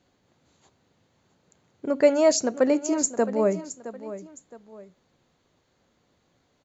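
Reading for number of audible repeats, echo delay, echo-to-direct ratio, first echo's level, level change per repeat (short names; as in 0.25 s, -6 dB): 2, 0.666 s, -13.5 dB, -14.0 dB, -9.0 dB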